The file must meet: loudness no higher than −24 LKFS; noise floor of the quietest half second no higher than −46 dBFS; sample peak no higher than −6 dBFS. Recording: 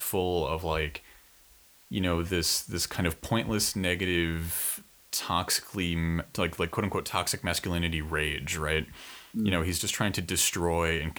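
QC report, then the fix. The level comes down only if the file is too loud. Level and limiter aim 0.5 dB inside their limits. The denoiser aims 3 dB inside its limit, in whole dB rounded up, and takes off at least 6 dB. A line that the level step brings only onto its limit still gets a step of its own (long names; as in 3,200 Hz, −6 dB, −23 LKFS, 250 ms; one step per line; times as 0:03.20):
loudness −29.0 LKFS: in spec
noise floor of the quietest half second −58 dBFS: in spec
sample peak −10.0 dBFS: in spec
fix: no processing needed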